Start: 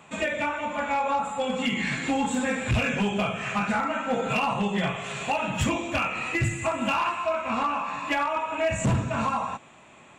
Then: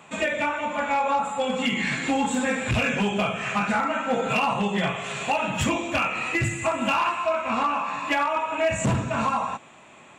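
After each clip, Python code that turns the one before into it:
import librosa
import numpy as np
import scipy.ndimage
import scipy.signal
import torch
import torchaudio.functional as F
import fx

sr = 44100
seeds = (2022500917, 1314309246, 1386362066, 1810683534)

y = fx.low_shelf(x, sr, hz=110.0, db=-7.0)
y = F.gain(torch.from_numpy(y), 2.5).numpy()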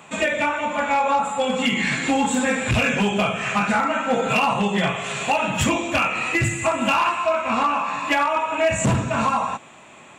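y = fx.high_shelf(x, sr, hz=7000.0, db=4.0)
y = F.gain(torch.from_numpy(y), 3.5).numpy()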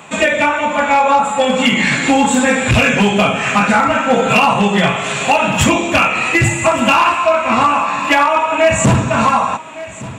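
y = x + 10.0 ** (-17.0 / 20.0) * np.pad(x, (int(1163 * sr / 1000.0), 0))[:len(x)]
y = F.gain(torch.from_numpy(y), 8.0).numpy()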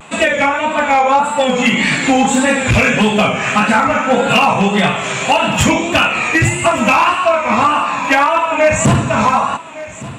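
y = fx.vibrato(x, sr, rate_hz=1.7, depth_cents=82.0)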